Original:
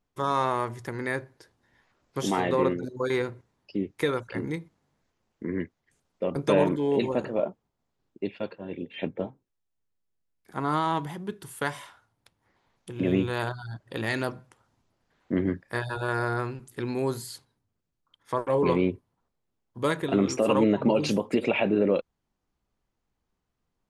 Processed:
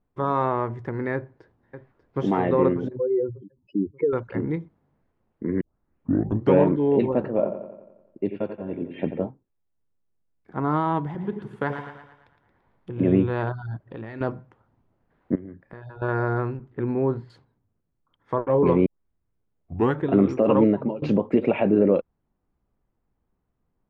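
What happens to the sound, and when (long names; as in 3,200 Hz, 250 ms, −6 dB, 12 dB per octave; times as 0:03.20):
0:01.14–0:02.29: delay throw 590 ms, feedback 40%, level −12 dB
0:02.97–0:04.13: expanding power law on the bin magnitudes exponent 3
0:05.61: tape start 0.99 s
0:07.26–0:09.21: bucket-brigade delay 88 ms, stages 2,048, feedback 57%, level −9.5 dB
0:11.06–0:13.06: echo with a time of its own for lows and highs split 760 Hz, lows 84 ms, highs 113 ms, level −7 dB
0:13.80–0:14.21: downward compressor 3 to 1, threshold −39 dBFS
0:15.35–0:16.02: downward compressor, threshold −42 dBFS
0:16.57–0:17.30: low-pass filter 2,300 Hz
0:18.86: tape start 1.21 s
0:20.59–0:21.02: fade out, to −24 dB
whole clip: low-pass filter 2,000 Hz 12 dB per octave; tilt shelving filter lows +3.5 dB, about 780 Hz; level +2.5 dB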